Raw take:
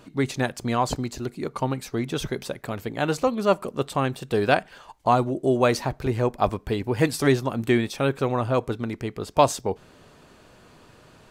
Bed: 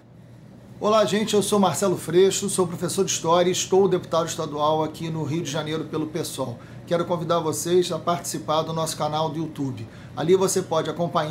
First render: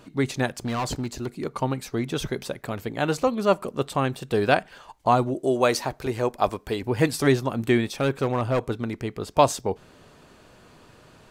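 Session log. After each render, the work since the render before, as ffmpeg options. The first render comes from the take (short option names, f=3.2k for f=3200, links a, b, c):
-filter_complex "[0:a]asettb=1/sr,asplit=3[a][b][c];[a]atrim=end=0.484[d];[b]atrim=start=0.48:end=1.44,asetpts=PTS-STARTPTS,afade=t=in:d=0.004:c=qsin,afade=t=out:st=0.956:d=0.004:c=qsin,asoftclip=type=hard:threshold=-23.5dB[e];[c]atrim=start=1.436[f];[d][e]acrossfade=d=0.004:c1=hsin:c2=qsin[g];[g][f]acrossfade=d=0.004:c1=qsin:c2=hsin,asettb=1/sr,asplit=3[h][i][j];[h]atrim=end=5.344[k];[i]atrim=start=5.34:end=6.82,asetpts=PTS-STARTPTS,afade=t=in:d=0.004:c=qsin,afade=t=out:st=1.476:d=0.004:c=qsin,bass=f=250:g=-7,treble=f=4k:g=4[l];[j]atrim=start=6.816[m];[k][l]acrossfade=d=0.004:c1=hsin:c2=qsin[n];[n][m]acrossfade=d=0.004:c1=qsin:c2=hsin,asettb=1/sr,asplit=3[o][p][q];[o]atrim=end=7.984[r];[p]atrim=start=7.98:end=8.61,asetpts=PTS-STARTPTS,afade=t=in:d=0.004:c=qsin,afade=t=out:st=0.626:d=0.004:c=qsin,volume=17dB,asoftclip=hard,volume=-17dB[s];[q]atrim=start=8.606[t];[r][s]acrossfade=d=0.004:c1=hsin:c2=qsin[u];[u][t]acrossfade=d=0.004:c1=qsin:c2=hsin"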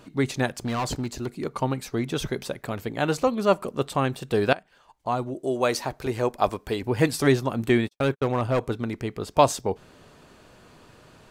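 -filter_complex "[0:a]asettb=1/sr,asplit=3[a][b][c];[a]atrim=end=7.694[d];[b]atrim=start=7.69:end=8.61,asetpts=PTS-STARTPTS,afade=t=in:d=0.004:c=qsin,afade=t=out:st=0.916:d=0.004:c=qsin,agate=range=-58dB:threshold=-31dB:ratio=16:release=100:detection=peak[e];[c]atrim=start=8.606[f];[d][e]acrossfade=d=0.004:c1=hsin:c2=qsin[g];[g][f]acrossfade=d=0.004:c1=qsin:c2=hsin,asplit=2[h][i];[h]atrim=end=4.53,asetpts=PTS-STARTPTS,afade=t=out:st=4.526:d=0.004:c=hsin:silence=0.125893[j];[i]atrim=start=4.53,asetpts=PTS-STARTPTS,afade=t=in:d=1.61:silence=0.125893[k];[j][k]concat=n=2:v=0:a=1"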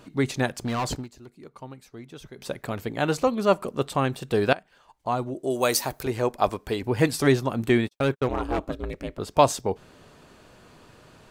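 -filter_complex "[0:a]asettb=1/sr,asplit=3[a][b][c];[a]atrim=end=5.504[d];[b]atrim=start=5.5:end=6.03,asetpts=PTS-STARTPTS,afade=t=in:d=0.004:c=qsin,afade=t=out:st=0.526:d=0.004:c=qsin,aemphasis=mode=production:type=50fm[e];[c]atrim=start=6.026[f];[d][e]acrossfade=d=0.004:c1=hsin:c2=qsin[g];[g][f]acrossfade=d=0.004:c1=qsin:c2=hsin,asettb=1/sr,asplit=3[h][i][j];[h]atrim=end=8.284[k];[i]atrim=start=8.28:end=9.19,asetpts=PTS-STARTPTS,afade=t=in:d=0.004:c=qsin,afade=t=out:st=0.906:d=0.004:c=qsin,aeval=exprs='val(0)*sin(2*PI*170*n/s)':c=same[l];[j]atrim=start=9.186[m];[k][l]acrossfade=d=0.004:c1=hsin:c2=qsin[n];[n][m]acrossfade=d=0.004:c1=qsin:c2=hsin,asplit=3[o][p][q];[o]atrim=end=1.08,asetpts=PTS-STARTPTS,afade=t=out:st=0.93:d=0.15:silence=0.177828[r];[p]atrim=start=1.08:end=2.36,asetpts=PTS-STARTPTS,volume=-15dB[s];[q]atrim=start=2.36,asetpts=PTS-STARTPTS,afade=t=in:d=0.15:silence=0.177828[t];[r][s][t]concat=n=3:v=0:a=1"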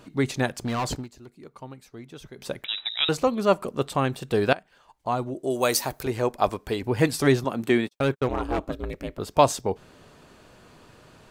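-filter_complex "[0:a]asettb=1/sr,asplit=3[a][b][c];[a]atrim=end=2.644[d];[b]atrim=start=2.64:end=3.09,asetpts=PTS-STARTPTS,afade=t=in:d=0.004:c=qsin,afade=t=out:st=0.446:d=0.004:c=qsin,lowpass=f=3.4k:t=q:w=0.5098,lowpass=f=3.4k:t=q:w=0.6013,lowpass=f=3.4k:t=q:w=0.9,lowpass=f=3.4k:t=q:w=2.563,afreqshift=-4000[e];[c]atrim=start=3.086[f];[d][e]acrossfade=d=0.004:c1=hsin:c2=qsin[g];[g][f]acrossfade=d=0.004:c1=qsin:c2=hsin,asettb=1/sr,asplit=3[h][i][j];[h]atrim=end=7.444[k];[i]atrim=start=7.44:end=7.93,asetpts=PTS-STARTPTS,afade=t=in:d=0.004:c=qsin,afade=t=out:st=0.486:d=0.004:c=qsin,highpass=170[l];[j]atrim=start=7.926[m];[k][l]acrossfade=d=0.004:c1=hsin:c2=qsin[n];[n][m]acrossfade=d=0.004:c1=qsin:c2=hsin,asettb=1/sr,asplit=3[o][p][q];[o]atrim=end=8.724[r];[p]atrim=start=8.72:end=9.36,asetpts=PTS-STARTPTS,afade=t=in:d=0.004:c=qsin,afade=t=out:st=0.636:d=0.004:c=qsin,equalizer=f=14k:t=o:w=0.28:g=7.5[s];[q]atrim=start=9.356[t];[r][s]acrossfade=d=0.004:c1=hsin:c2=qsin[u];[u][t]acrossfade=d=0.004:c1=qsin:c2=hsin"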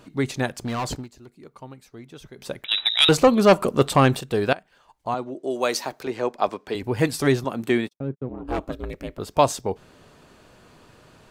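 -filter_complex "[0:a]asettb=1/sr,asplit=3[a][b][c];[a]atrim=end=2.714[d];[b]atrim=start=2.71:end=4.21,asetpts=PTS-STARTPTS,afade=t=in:d=0.004:c=qsin,afade=t=out:st=1.496:d=0.004:c=qsin,aeval=exprs='0.422*sin(PI/2*1.78*val(0)/0.422)':c=same[e];[c]atrim=start=4.206[f];[d][e]acrossfade=d=0.004:c1=hsin:c2=qsin[g];[g][f]acrossfade=d=0.004:c1=qsin:c2=hsin,asettb=1/sr,asplit=3[h][i][j];[h]atrim=end=5.144[k];[i]atrim=start=5.14:end=6.75,asetpts=PTS-STARTPTS,afade=t=in:d=0.004:c=qsin,afade=t=out:st=1.606:d=0.004:c=qsin,acrossover=split=170 6700:gain=0.126 1 0.224[l][m][n];[l][m][n]amix=inputs=3:normalize=0[o];[j]atrim=start=6.746[p];[k][o]acrossfade=d=0.004:c1=hsin:c2=qsin[q];[q][p]acrossfade=d=0.004:c1=qsin:c2=hsin,asplit=3[r][s][t];[r]afade=t=out:st=7.92:d=0.02[u];[s]bandpass=f=190:t=q:w=1.3,afade=t=in:st=7.92:d=0.02,afade=t=out:st=8.47:d=0.02[v];[t]afade=t=in:st=8.47:d=0.02[w];[u][v][w]amix=inputs=3:normalize=0"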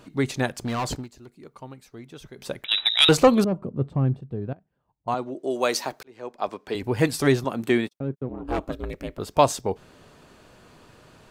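-filter_complex "[0:a]asettb=1/sr,asplit=3[a][b][c];[a]atrim=end=3.444[d];[b]atrim=start=3.44:end=5.08,asetpts=PTS-STARTPTS,afade=t=in:d=0.004:c=qsin,afade=t=out:st=1.636:d=0.004:c=qsin,bandpass=f=120:t=q:w=1.2[e];[c]atrim=start=5.076[f];[d][e]acrossfade=d=0.004:c1=hsin:c2=qsin[g];[g][f]acrossfade=d=0.004:c1=qsin:c2=hsin,asplit=2[h][i];[h]atrim=end=6.03,asetpts=PTS-STARTPTS,afade=t=out:st=6.026:d=0.004:c=hsin[j];[i]atrim=start=6.03,asetpts=PTS-STARTPTS,afade=t=in:d=0.77[k];[j][k]concat=n=2:v=0:a=1"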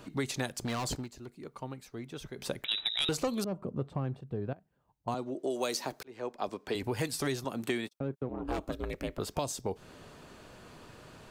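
-filter_complex "[0:a]alimiter=limit=-10dB:level=0:latency=1:release=483,acrossover=split=470|3900[a][b][c];[a]acompressor=threshold=-35dB:ratio=4[d];[b]acompressor=threshold=-37dB:ratio=4[e];[c]acompressor=threshold=-35dB:ratio=4[f];[d][e][f]amix=inputs=3:normalize=0"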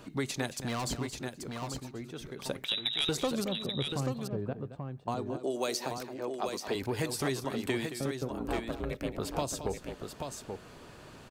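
-af "aecho=1:1:222|834:0.251|0.501"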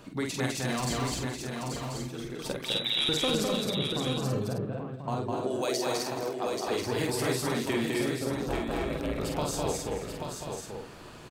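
-filter_complex "[0:a]asplit=2[a][b];[b]adelay=47,volume=-4dB[c];[a][c]amix=inputs=2:normalize=0,aecho=1:1:205|258:0.668|0.668"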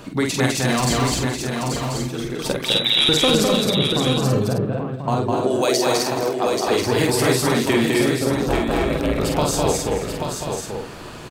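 -af "volume=11dB"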